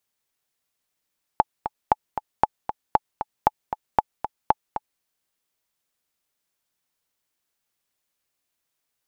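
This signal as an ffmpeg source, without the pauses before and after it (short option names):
-f lavfi -i "aevalsrc='pow(10,(-2.5-10*gte(mod(t,2*60/232),60/232))/20)*sin(2*PI*858*mod(t,60/232))*exp(-6.91*mod(t,60/232)/0.03)':d=3.62:s=44100"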